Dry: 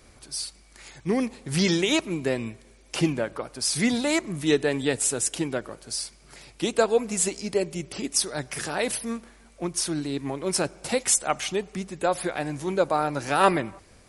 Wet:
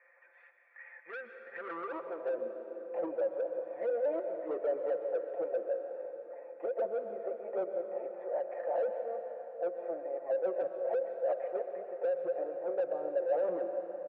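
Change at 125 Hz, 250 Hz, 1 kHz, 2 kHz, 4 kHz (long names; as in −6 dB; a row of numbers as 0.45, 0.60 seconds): below −35 dB, −20.5 dB, −13.0 dB, −17.5 dB, below −40 dB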